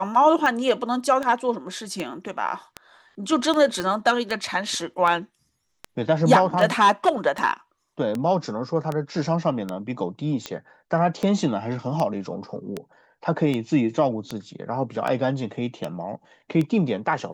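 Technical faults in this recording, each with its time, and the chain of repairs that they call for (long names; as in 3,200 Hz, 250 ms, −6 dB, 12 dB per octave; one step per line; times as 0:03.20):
scratch tick 78 rpm −14 dBFS
0:03.80: click −13 dBFS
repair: click removal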